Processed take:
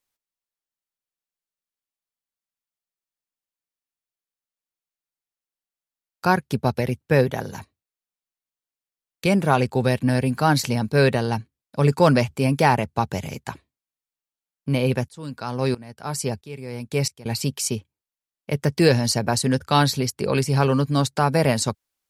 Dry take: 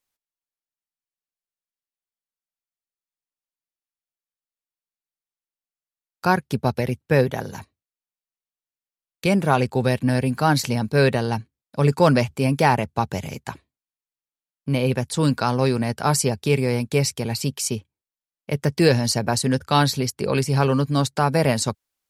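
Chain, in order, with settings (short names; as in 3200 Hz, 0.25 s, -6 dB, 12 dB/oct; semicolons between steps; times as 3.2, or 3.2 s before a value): 15.08–17.26 dB-ramp tremolo swelling 1.5 Hz, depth 20 dB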